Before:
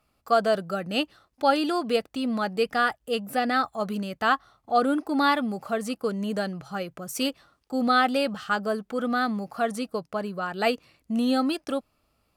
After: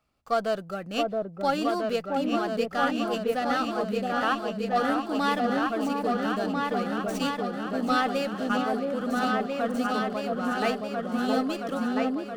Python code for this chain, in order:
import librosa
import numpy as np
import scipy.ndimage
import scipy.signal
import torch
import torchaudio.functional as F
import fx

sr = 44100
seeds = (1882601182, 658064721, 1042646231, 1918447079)

p1 = x + fx.echo_opening(x, sr, ms=672, hz=750, octaves=2, feedback_pct=70, wet_db=0, dry=0)
p2 = fx.running_max(p1, sr, window=3)
y = F.gain(torch.from_numpy(p2), -4.5).numpy()